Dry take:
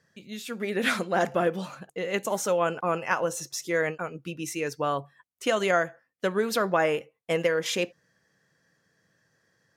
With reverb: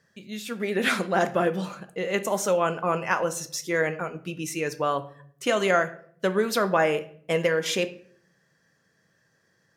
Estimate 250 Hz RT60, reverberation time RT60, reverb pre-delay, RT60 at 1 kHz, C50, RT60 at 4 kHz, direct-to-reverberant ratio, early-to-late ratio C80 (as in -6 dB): 0.80 s, 0.60 s, 5 ms, 0.50 s, 16.0 dB, 0.40 s, 10.0 dB, 19.5 dB